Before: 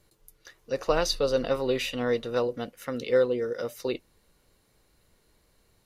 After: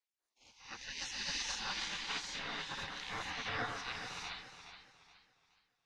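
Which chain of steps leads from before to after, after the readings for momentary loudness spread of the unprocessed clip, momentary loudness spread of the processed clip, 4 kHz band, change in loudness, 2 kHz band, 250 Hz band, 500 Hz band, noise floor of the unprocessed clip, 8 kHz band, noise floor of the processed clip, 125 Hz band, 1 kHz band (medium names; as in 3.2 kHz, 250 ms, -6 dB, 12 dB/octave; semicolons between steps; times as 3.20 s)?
10 LU, 14 LU, -3.0 dB, -11.5 dB, -2.5 dB, -19.5 dB, -27.5 dB, -67 dBFS, -3.0 dB, under -85 dBFS, -13.5 dB, -7.0 dB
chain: reverse spectral sustain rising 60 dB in 0.41 s; hum notches 60/120/180/240/300 Hz; ring modulator 130 Hz; low-pass 6.8 kHz 24 dB/octave; peaking EQ 1.3 kHz +10 dB 0.73 oct; in parallel at -1 dB: compression, threshold -40 dBFS, peak gain reduction 21.5 dB; on the sum: gate with hold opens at -43 dBFS; gated-style reverb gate 500 ms rising, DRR -4.5 dB; spectral gate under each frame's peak -20 dB weak; modulated delay 420 ms, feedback 34%, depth 76 cents, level -10 dB; trim -6.5 dB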